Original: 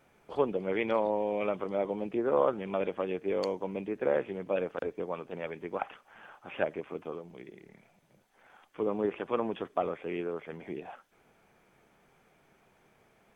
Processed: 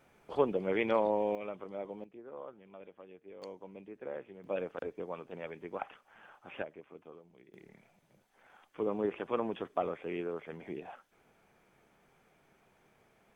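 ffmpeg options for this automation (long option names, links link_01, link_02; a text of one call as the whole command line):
ffmpeg -i in.wav -af "asetnsamples=nb_out_samples=441:pad=0,asendcmd='1.35 volume volume -10dB;2.04 volume volume -20dB;3.42 volume volume -13.5dB;4.44 volume volume -5dB;6.62 volume volume -13dB;7.54 volume volume -2.5dB',volume=-0.5dB" out.wav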